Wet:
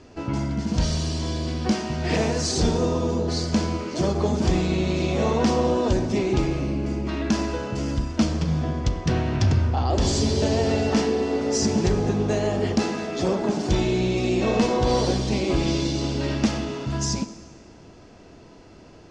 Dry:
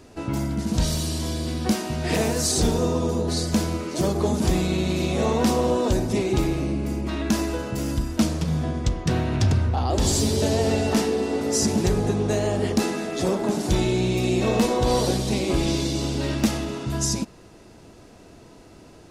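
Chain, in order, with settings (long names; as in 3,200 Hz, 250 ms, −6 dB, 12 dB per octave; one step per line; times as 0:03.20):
low-pass filter 6,400 Hz 24 dB per octave
notch filter 3,800 Hz, Q 16
convolution reverb RT60 1.6 s, pre-delay 8 ms, DRR 12.5 dB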